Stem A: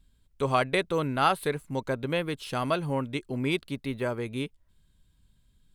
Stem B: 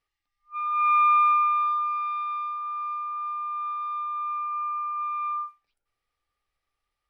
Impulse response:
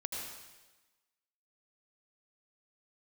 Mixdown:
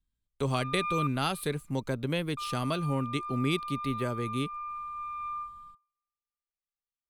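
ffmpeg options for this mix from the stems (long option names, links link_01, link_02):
-filter_complex "[0:a]volume=2dB[link_01];[1:a]volume=-4.5dB,asplit=3[link_02][link_03][link_04];[link_02]atrim=end=1.07,asetpts=PTS-STARTPTS,afade=type=out:start_time=1.066:duration=0.004:curve=hsin[link_05];[link_03]atrim=start=1.07:end=2.37,asetpts=PTS-STARTPTS,volume=0[link_06];[link_04]atrim=start=2.37,asetpts=PTS-STARTPTS,afade=type=in:duration=0.004:curve=hsin[link_07];[link_05][link_06][link_07]concat=n=3:v=0:a=1,asplit=2[link_08][link_09];[link_09]volume=-10.5dB[link_10];[2:a]atrim=start_sample=2205[link_11];[link_10][link_11]afir=irnorm=-1:irlink=0[link_12];[link_01][link_08][link_12]amix=inputs=3:normalize=0,agate=range=-21dB:threshold=-48dB:ratio=16:detection=peak,acrossover=split=300|3000[link_13][link_14][link_15];[link_14]acompressor=threshold=-39dB:ratio=2[link_16];[link_13][link_16][link_15]amix=inputs=3:normalize=0"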